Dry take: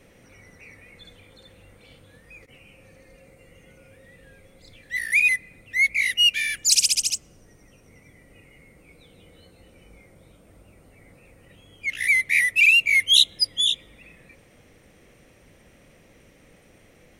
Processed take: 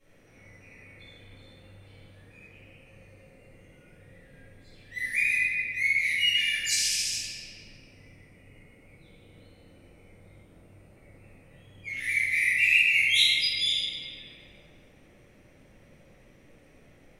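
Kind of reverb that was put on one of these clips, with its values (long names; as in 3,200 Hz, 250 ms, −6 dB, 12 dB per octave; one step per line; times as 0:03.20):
rectangular room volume 120 cubic metres, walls hard, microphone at 2.2 metres
level −18.5 dB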